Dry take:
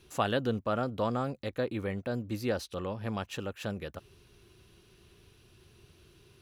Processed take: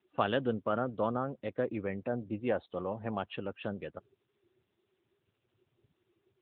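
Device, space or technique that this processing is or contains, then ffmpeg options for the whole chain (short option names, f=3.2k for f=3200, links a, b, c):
mobile call with aggressive noise cancelling: -filter_complex "[0:a]asplit=3[a][b][c];[a]afade=t=out:st=2.08:d=0.02[d];[b]adynamicequalizer=threshold=0.00447:dfrequency=720:dqfactor=2.6:tfrequency=720:tqfactor=2.6:attack=5:release=100:ratio=0.375:range=2.5:mode=boostabove:tftype=bell,afade=t=in:st=2.08:d=0.02,afade=t=out:st=3.23:d=0.02[e];[c]afade=t=in:st=3.23:d=0.02[f];[d][e][f]amix=inputs=3:normalize=0,highpass=f=140:p=1,afftdn=nr=25:nf=-46" -ar 8000 -c:a libopencore_amrnb -b:a 10200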